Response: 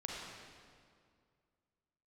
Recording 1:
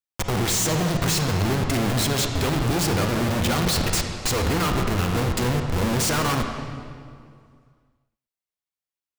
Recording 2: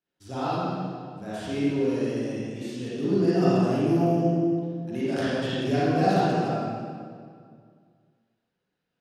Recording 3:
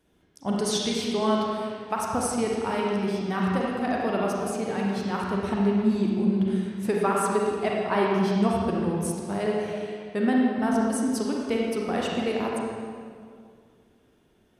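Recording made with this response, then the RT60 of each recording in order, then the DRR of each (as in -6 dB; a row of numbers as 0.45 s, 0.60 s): 3; 2.2 s, 2.2 s, 2.2 s; 3.5 dB, -10.5 dB, -3.0 dB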